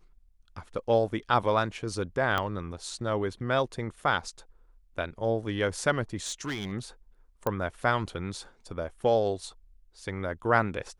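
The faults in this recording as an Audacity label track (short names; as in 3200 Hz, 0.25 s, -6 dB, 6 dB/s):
2.380000	2.380000	pop -14 dBFS
6.160000	6.720000	clipped -28.5 dBFS
7.470000	7.470000	pop -15 dBFS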